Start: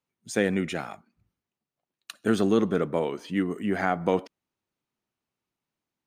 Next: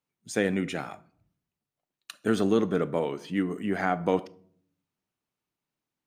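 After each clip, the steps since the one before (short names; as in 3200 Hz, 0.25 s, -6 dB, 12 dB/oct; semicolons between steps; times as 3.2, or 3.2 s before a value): shoebox room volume 700 m³, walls furnished, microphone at 0.43 m; gain -1.5 dB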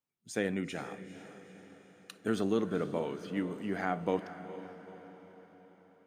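diffused feedback echo 0.462 s, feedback 52%, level -12.5 dB; gain -6.5 dB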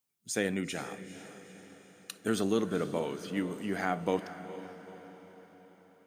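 high shelf 4300 Hz +11 dB; gain +1 dB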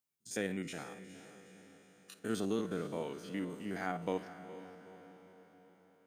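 stepped spectrum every 50 ms; gain -5 dB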